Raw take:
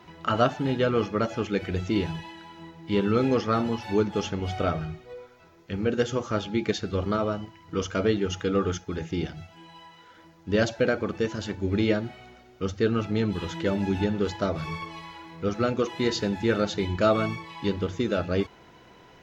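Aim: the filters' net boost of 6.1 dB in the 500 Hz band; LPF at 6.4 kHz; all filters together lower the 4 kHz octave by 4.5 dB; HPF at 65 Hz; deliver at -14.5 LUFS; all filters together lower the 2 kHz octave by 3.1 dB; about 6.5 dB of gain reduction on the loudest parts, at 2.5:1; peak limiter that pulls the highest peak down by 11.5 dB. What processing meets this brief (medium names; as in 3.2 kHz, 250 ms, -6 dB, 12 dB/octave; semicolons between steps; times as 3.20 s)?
high-pass 65 Hz; low-pass 6.4 kHz; peaking EQ 500 Hz +7.5 dB; peaking EQ 2 kHz -4 dB; peaking EQ 4 kHz -4 dB; compression 2.5:1, threshold -23 dBFS; trim +19 dB; peak limiter -4.5 dBFS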